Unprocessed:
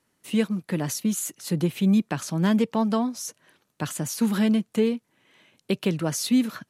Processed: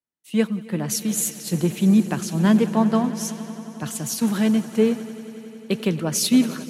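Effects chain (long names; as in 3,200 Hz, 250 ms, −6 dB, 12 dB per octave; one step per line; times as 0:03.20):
echo that builds up and dies away 91 ms, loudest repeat 5, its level −16.5 dB
multiband upward and downward expander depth 70%
level +2.5 dB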